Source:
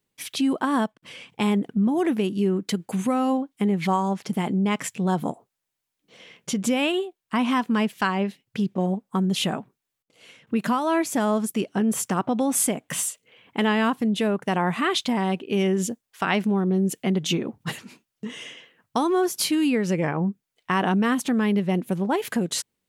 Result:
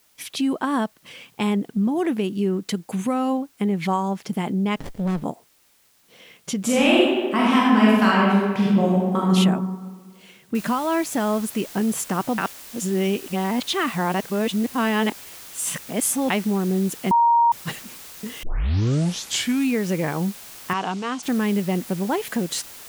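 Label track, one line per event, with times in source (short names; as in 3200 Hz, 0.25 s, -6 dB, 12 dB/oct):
4.760000	5.240000	running maximum over 33 samples
6.630000	9.300000	reverb throw, RT60 1.6 s, DRR -6 dB
10.550000	10.550000	noise floor step -60 dB -41 dB
12.380000	16.300000	reverse
17.110000	17.520000	bleep 937 Hz -13 dBFS
18.430000	18.430000	tape start 1.34 s
20.730000	21.230000	speaker cabinet 200–7200 Hz, peaks and dips at 220 Hz -9 dB, 340 Hz -9 dB, 570 Hz -7 dB, 1800 Hz -9 dB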